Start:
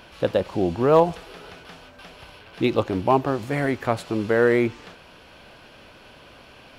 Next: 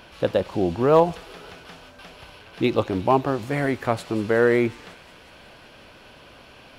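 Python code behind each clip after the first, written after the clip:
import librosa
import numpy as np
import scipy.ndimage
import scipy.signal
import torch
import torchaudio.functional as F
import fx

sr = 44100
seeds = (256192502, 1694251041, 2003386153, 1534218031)

y = fx.echo_wet_highpass(x, sr, ms=182, feedback_pct=76, hz=4300.0, wet_db=-12.0)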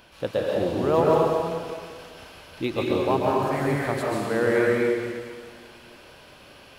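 y = fx.high_shelf(x, sr, hz=7000.0, db=7.5)
y = fx.rev_plate(y, sr, seeds[0], rt60_s=1.9, hf_ratio=0.9, predelay_ms=115, drr_db=-4.0)
y = y * librosa.db_to_amplitude(-6.5)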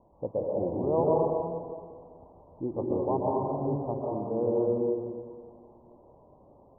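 y = scipy.signal.sosfilt(scipy.signal.butter(12, 1000.0, 'lowpass', fs=sr, output='sos'), x)
y = y * librosa.db_to_amplitude(-5.0)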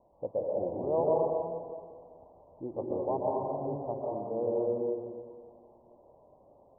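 y = fx.peak_eq(x, sr, hz=630.0, db=8.5, octaves=1.1)
y = y * librosa.db_to_amplitude(-8.5)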